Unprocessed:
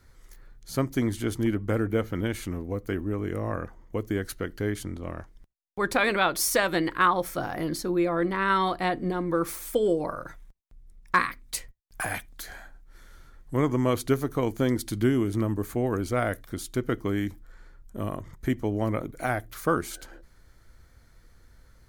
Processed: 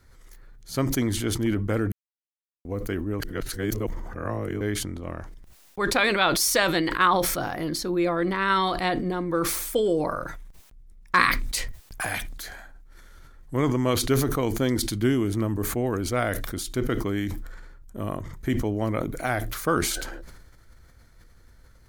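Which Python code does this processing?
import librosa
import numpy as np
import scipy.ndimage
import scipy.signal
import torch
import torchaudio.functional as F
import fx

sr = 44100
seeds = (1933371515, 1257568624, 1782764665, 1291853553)

y = fx.edit(x, sr, fx.silence(start_s=1.92, length_s=0.73),
    fx.reverse_span(start_s=3.2, length_s=1.41), tone=tone)
y = fx.dynamic_eq(y, sr, hz=4200.0, q=0.85, threshold_db=-44.0, ratio=4.0, max_db=6)
y = fx.sustainer(y, sr, db_per_s=38.0)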